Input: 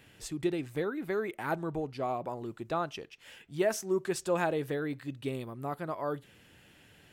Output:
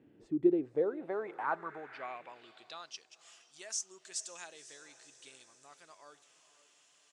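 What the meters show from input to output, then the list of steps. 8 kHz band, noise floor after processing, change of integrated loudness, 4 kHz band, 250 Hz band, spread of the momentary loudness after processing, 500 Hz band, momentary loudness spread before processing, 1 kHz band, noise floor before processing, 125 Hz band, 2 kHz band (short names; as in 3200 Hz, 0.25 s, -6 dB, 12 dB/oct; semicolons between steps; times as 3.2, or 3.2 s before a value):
+2.5 dB, -68 dBFS, -2.5 dB, -2.5 dB, -2.5 dB, 24 LU, -5.0 dB, 10 LU, -6.0 dB, -60 dBFS, -16.5 dB, -7.0 dB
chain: diffused feedback echo 0.514 s, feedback 57%, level -15 dB; band-pass sweep 300 Hz -> 6500 Hz, 0.35–3.11; downsampling 22050 Hz; gain +5 dB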